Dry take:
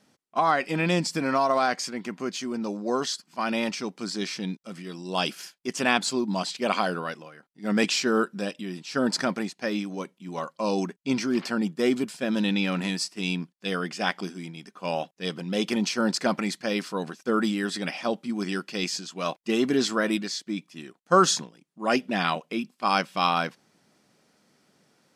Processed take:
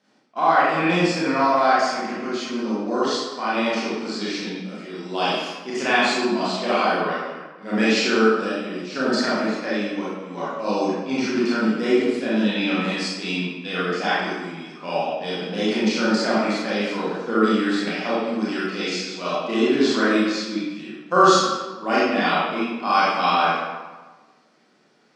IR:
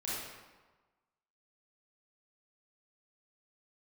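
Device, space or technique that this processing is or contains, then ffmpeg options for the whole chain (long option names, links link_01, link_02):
supermarket ceiling speaker: -filter_complex "[0:a]highpass=210,lowpass=5300[link_01];[1:a]atrim=start_sample=2205[link_02];[link_01][link_02]afir=irnorm=-1:irlink=0,volume=2.5dB"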